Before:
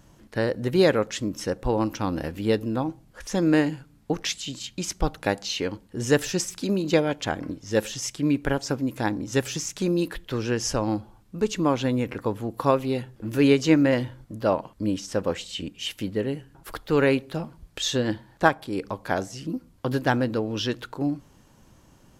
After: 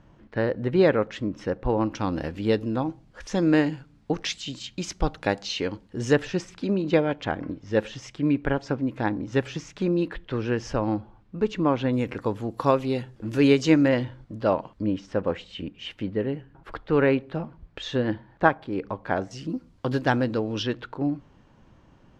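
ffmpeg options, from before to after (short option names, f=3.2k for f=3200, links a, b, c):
-af "asetnsamples=n=441:p=0,asendcmd='1.95 lowpass f 5300;6.13 lowpass f 2800;11.93 lowpass f 7200;13.88 lowpass f 4300;14.82 lowpass f 2400;19.31 lowpass f 5800;20.63 lowpass f 3000',lowpass=2.6k"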